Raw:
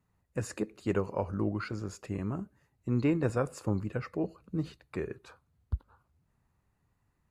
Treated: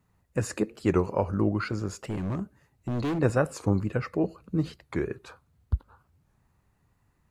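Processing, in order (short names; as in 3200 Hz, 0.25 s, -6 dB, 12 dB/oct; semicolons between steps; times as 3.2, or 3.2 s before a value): 2.04–3.19 hard clip -32 dBFS, distortion -10 dB; record warp 45 rpm, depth 160 cents; gain +6 dB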